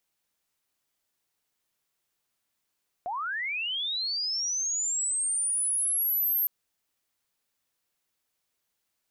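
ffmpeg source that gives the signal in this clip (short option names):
-f lavfi -i "aevalsrc='pow(10,(-29.5+6.5*t/3.41)/20)*sin(2*PI*(670*t+12330*t*t/(2*3.41)))':d=3.41:s=44100"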